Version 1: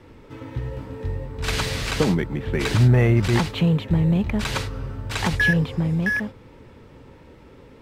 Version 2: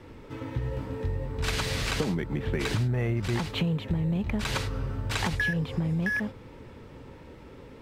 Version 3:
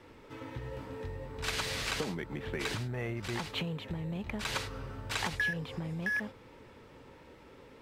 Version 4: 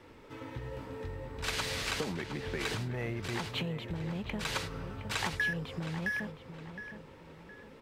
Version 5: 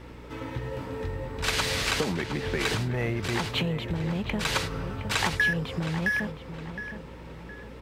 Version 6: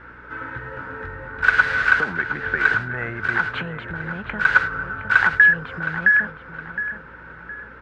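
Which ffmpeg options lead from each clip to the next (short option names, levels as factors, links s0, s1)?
-af "acompressor=threshold=0.0562:ratio=6"
-af "lowshelf=f=300:g=-9.5,volume=0.708"
-filter_complex "[0:a]asplit=2[s0][s1];[s1]adelay=715,lowpass=f=3300:p=1,volume=0.316,asplit=2[s2][s3];[s3]adelay=715,lowpass=f=3300:p=1,volume=0.37,asplit=2[s4][s5];[s5]adelay=715,lowpass=f=3300:p=1,volume=0.37,asplit=2[s6][s7];[s7]adelay=715,lowpass=f=3300:p=1,volume=0.37[s8];[s0][s2][s4][s6][s8]amix=inputs=5:normalize=0"
-af "aeval=exprs='val(0)+0.00224*(sin(2*PI*60*n/s)+sin(2*PI*2*60*n/s)/2+sin(2*PI*3*60*n/s)/3+sin(2*PI*4*60*n/s)/4+sin(2*PI*5*60*n/s)/5)':c=same,volume=2.37"
-af "crystalizer=i=5.5:c=0,lowpass=f=1500:t=q:w=15,volume=0.631"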